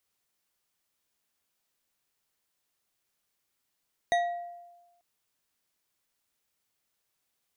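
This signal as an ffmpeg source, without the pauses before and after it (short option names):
-f lavfi -i "aevalsrc='0.0891*pow(10,-3*t/1.15)*sin(2*PI*697*t)+0.0447*pow(10,-3*t/0.565)*sin(2*PI*1921.6*t)+0.0224*pow(10,-3*t/0.353)*sin(2*PI*3766.6*t)+0.0112*pow(10,-3*t/0.248)*sin(2*PI*6226.3*t)+0.00562*pow(10,-3*t/0.188)*sin(2*PI*9298*t)':d=0.89:s=44100"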